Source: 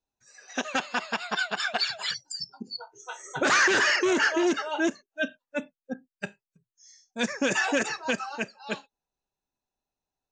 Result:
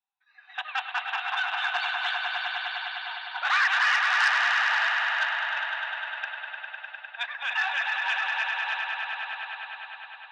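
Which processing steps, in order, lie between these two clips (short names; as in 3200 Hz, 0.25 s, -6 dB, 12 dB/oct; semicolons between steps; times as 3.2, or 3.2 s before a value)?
Chebyshev band-pass 740–3800 Hz, order 5; swelling echo 0.101 s, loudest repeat 5, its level -7 dB; core saturation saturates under 2400 Hz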